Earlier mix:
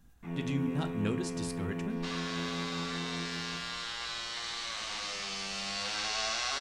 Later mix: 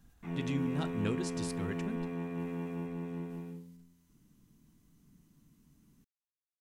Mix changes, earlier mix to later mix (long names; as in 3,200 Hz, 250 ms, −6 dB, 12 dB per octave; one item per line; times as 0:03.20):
speech: send −7.5 dB
second sound: muted